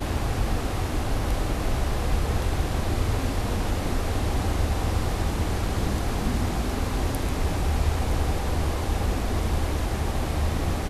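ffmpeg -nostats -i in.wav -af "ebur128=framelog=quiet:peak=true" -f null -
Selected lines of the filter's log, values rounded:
Integrated loudness:
  I:         -27.2 LUFS
  Threshold: -37.2 LUFS
Loudness range:
  LRA:         0.5 LU
  Threshold: -47.1 LUFS
  LRA low:   -27.4 LUFS
  LRA high:  -26.9 LUFS
True peak:
  Peak:      -11.7 dBFS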